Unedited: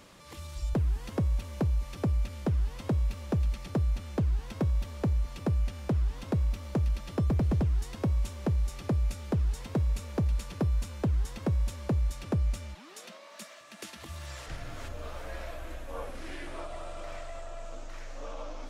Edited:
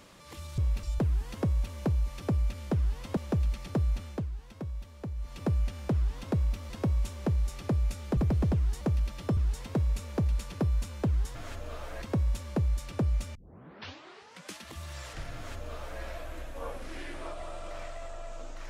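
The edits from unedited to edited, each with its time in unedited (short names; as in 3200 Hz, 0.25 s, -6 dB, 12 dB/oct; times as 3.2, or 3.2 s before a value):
2.92–3.17 move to 0.58
4.01–5.44 dip -9.5 dB, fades 0.28 s
6.7–7.26 swap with 7.9–9.37
12.68 tape start 1.25 s
14.68–15.35 copy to 11.35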